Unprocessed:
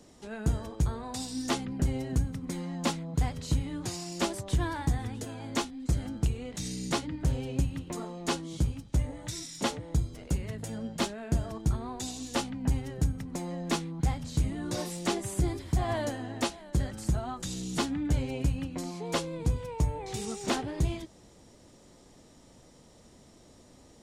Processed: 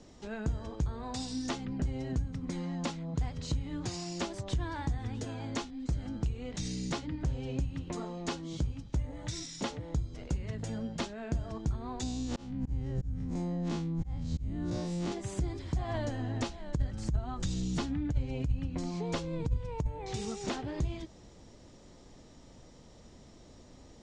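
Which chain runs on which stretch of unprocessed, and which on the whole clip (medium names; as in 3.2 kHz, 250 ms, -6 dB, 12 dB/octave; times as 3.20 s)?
12.03–15.12 s: spectral blur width 81 ms + bass shelf 350 Hz +10 dB + slow attack 403 ms
15.94–19.87 s: bass shelf 130 Hz +11 dB + compressor with a negative ratio -20 dBFS, ratio -0.5
whole clip: low-pass 7 kHz 24 dB/octave; compression 4:1, threshold -33 dBFS; bass shelf 78 Hz +8 dB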